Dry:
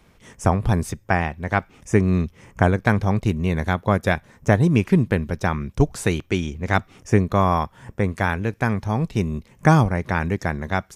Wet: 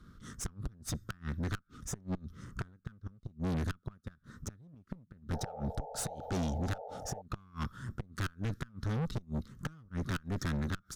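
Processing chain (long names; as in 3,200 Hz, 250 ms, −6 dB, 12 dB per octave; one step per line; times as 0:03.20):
drawn EQ curve 260 Hz 0 dB, 850 Hz −24 dB, 1,300 Hz +6 dB, 2,400 Hz −19 dB, 3,700 Hz 0 dB, 7,800 Hz −4 dB
in parallel at −6 dB: wave folding −19.5 dBFS
on the sum: gate with flip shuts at −13 dBFS, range −37 dB
tube saturation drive 31 dB, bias 0.5
sound drawn into the spectrogram noise, 0:05.33–0:07.22, 420–910 Hz −45 dBFS
one half of a high-frequency compander decoder only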